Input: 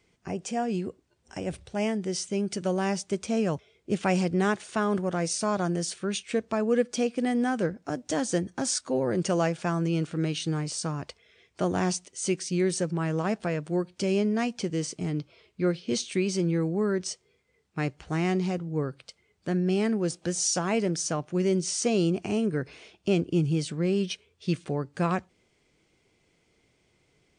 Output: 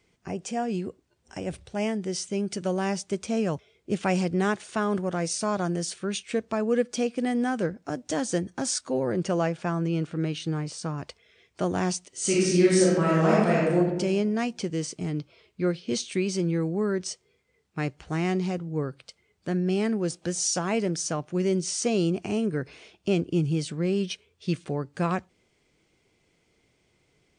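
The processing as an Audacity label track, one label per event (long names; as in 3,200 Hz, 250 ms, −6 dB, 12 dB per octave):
9.120000	10.980000	high-shelf EQ 4,500 Hz −8.5 dB
12.080000	13.770000	thrown reverb, RT60 1.1 s, DRR −6.5 dB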